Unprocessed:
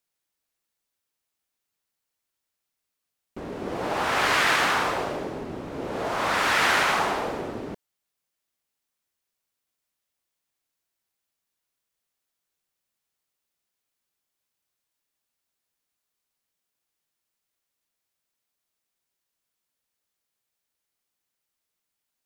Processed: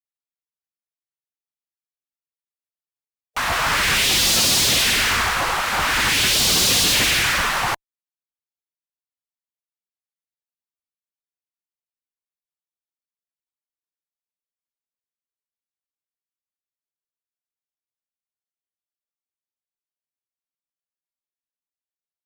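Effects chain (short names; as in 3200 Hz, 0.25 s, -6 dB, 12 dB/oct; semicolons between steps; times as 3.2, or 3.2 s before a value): spectral gate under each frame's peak -15 dB weak; in parallel at -6.5 dB: fuzz box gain 49 dB, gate -55 dBFS; on the sum: gain +2 dB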